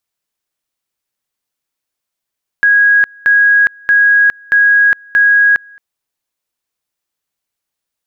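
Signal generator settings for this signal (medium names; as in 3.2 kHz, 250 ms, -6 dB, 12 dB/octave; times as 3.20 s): two-level tone 1.65 kHz -5.5 dBFS, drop 29.5 dB, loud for 0.41 s, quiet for 0.22 s, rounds 5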